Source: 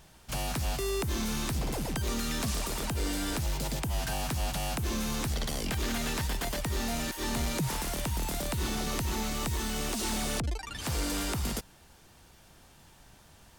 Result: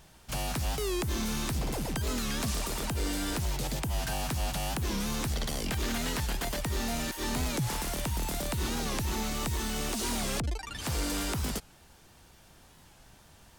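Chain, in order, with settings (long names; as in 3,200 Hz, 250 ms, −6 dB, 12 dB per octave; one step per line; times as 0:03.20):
wow of a warped record 45 rpm, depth 160 cents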